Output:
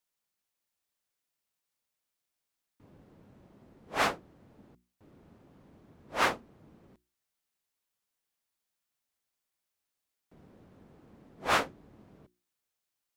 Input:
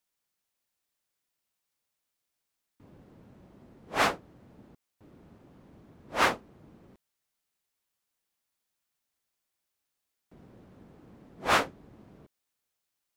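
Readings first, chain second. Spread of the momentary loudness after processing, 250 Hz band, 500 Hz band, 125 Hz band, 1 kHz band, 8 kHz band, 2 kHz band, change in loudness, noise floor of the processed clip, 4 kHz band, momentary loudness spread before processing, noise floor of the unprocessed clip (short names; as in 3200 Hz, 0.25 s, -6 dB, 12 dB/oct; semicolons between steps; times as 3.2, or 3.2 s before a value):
14 LU, -3.0 dB, -2.5 dB, -3.0 dB, -2.5 dB, -2.5 dB, -2.5 dB, -2.5 dB, under -85 dBFS, -2.5 dB, 14 LU, -84 dBFS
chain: notches 60/120/180/240/300/360 Hz; gain -2.5 dB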